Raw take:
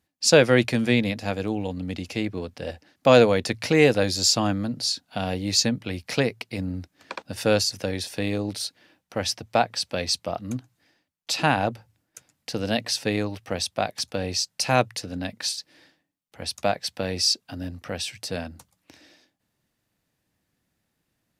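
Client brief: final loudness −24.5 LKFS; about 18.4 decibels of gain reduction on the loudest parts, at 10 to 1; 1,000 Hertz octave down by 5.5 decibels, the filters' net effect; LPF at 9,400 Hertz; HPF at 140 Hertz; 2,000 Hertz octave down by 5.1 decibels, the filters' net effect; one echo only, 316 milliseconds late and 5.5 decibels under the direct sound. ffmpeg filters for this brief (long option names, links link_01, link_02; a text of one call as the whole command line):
ffmpeg -i in.wav -af "highpass=140,lowpass=9400,equalizer=frequency=1000:width_type=o:gain=-7.5,equalizer=frequency=2000:width_type=o:gain=-4.5,acompressor=threshold=-31dB:ratio=10,aecho=1:1:316:0.531,volume=11dB" out.wav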